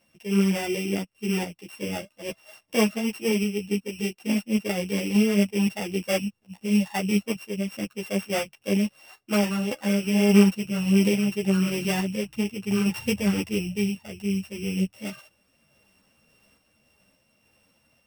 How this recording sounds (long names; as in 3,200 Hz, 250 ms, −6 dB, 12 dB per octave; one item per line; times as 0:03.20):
a buzz of ramps at a fixed pitch in blocks of 16 samples
sample-and-hold tremolo
a shimmering, thickened sound